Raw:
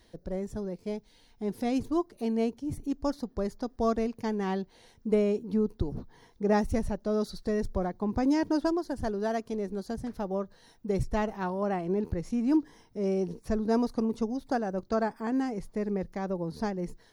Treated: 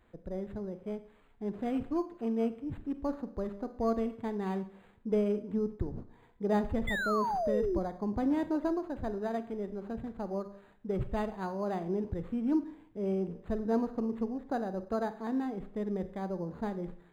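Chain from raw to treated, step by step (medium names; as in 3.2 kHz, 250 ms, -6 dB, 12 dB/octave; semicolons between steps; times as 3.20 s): Schroeder reverb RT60 0.59 s, combs from 31 ms, DRR 11 dB; painted sound fall, 6.87–7.79 s, 320–2100 Hz -27 dBFS; decimation joined by straight lines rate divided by 8×; trim -4 dB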